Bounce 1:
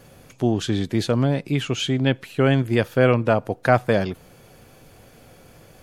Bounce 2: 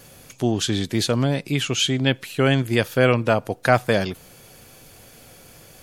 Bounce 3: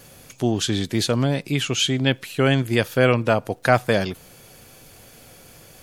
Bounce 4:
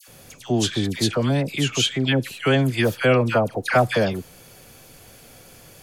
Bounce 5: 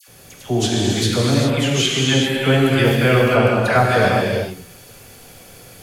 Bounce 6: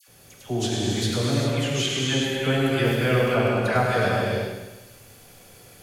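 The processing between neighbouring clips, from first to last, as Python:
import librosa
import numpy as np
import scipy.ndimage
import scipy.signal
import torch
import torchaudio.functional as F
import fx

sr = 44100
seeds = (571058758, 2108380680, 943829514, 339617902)

y1 = fx.high_shelf(x, sr, hz=2600.0, db=10.5)
y1 = y1 * 10.0 ** (-1.0 / 20.0)
y2 = fx.dmg_crackle(y1, sr, seeds[0], per_s=61.0, level_db=-43.0)
y3 = fx.dispersion(y2, sr, late='lows', ms=83.0, hz=1300.0)
y4 = fx.rev_gated(y3, sr, seeds[1], gate_ms=440, shape='flat', drr_db=-3.5)
y5 = fx.echo_feedback(y4, sr, ms=102, feedback_pct=54, wet_db=-8.0)
y5 = y5 * 10.0 ** (-7.5 / 20.0)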